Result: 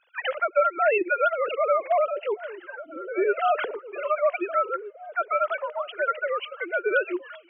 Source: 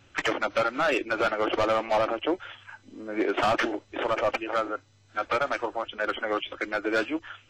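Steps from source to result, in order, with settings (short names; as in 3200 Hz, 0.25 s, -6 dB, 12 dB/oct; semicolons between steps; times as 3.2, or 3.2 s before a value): sine-wave speech; delay with a stepping band-pass 0.785 s, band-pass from 190 Hz, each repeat 1.4 oct, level -11.5 dB; gain +2 dB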